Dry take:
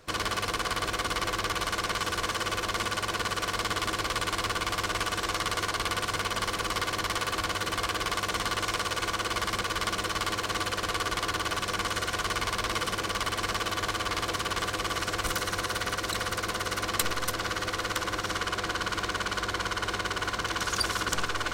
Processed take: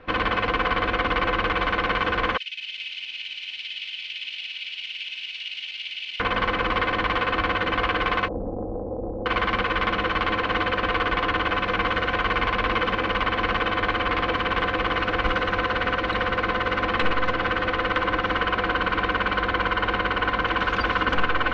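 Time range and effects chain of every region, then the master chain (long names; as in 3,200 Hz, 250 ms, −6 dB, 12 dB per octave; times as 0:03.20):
0:02.37–0:06.20: elliptic high-pass filter 2,600 Hz, stop band 60 dB + feedback echo at a low word length 205 ms, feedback 55%, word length 10 bits, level −5 dB
0:08.28–0:09.26: Butterworth low-pass 630 Hz 48 dB per octave + highs frequency-modulated by the lows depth 0.62 ms
whole clip: low-pass filter 2,800 Hz 24 dB per octave; comb filter 3.9 ms, depth 50%; level +7.5 dB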